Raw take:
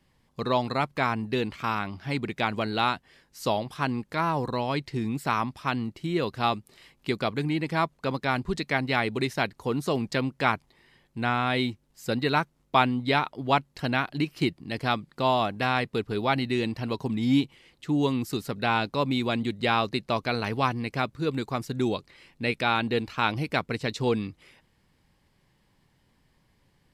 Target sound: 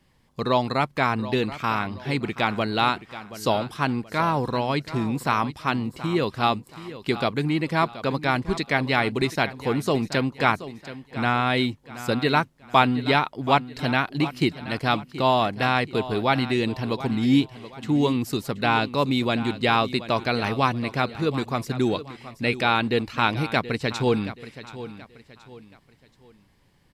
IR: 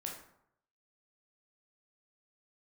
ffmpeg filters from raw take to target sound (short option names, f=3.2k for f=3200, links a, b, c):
-af "aecho=1:1:727|1454|2181:0.188|0.0678|0.0244,volume=3.5dB"